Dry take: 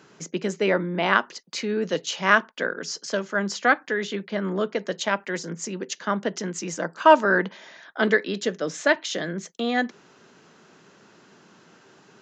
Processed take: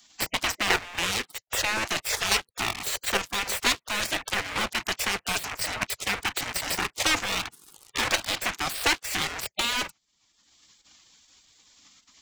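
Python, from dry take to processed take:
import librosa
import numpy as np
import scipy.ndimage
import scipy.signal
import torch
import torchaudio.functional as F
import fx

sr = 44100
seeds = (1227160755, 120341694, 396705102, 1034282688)

y = fx.leveller(x, sr, passes=5)
y = fx.curve_eq(y, sr, hz=(110.0, 150.0, 280.0, 580.0, 1000.0, 1600.0, 2300.0, 3400.0, 7700.0, 11000.0), db=(0, -17, -17, -1, -6, -5, 1, -4, 0, -3))
y = fx.level_steps(y, sr, step_db=10)
y = fx.spec_gate(y, sr, threshold_db=-15, keep='weak')
y = fx.band_squash(y, sr, depth_pct=70)
y = F.gain(torch.from_numpy(y), 2.0).numpy()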